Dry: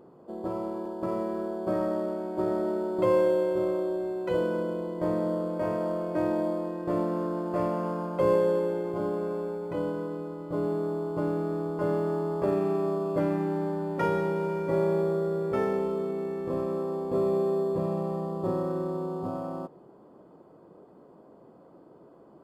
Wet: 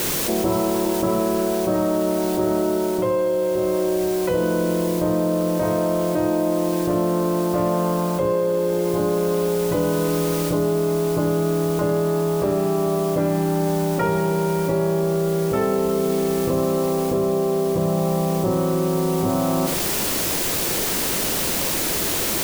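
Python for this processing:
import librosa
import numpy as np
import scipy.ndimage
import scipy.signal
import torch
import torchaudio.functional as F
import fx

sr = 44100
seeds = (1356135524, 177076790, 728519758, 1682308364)

p1 = x + 10.0 ** (-12.0 / 20.0) * np.pad(x, (int(80 * sr / 1000.0), 0))[:len(x)]
p2 = fx.quant_dither(p1, sr, seeds[0], bits=6, dither='triangular')
p3 = p1 + (p2 * librosa.db_to_amplitude(-6.5))
p4 = fx.rider(p3, sr, range_db=10, speed_s=0.5)
p5 = fx.low_shelf(p4, sr, hz=110.0, db=8.0)
y = fx.env_flatten(p5, sr, amount_pct=70)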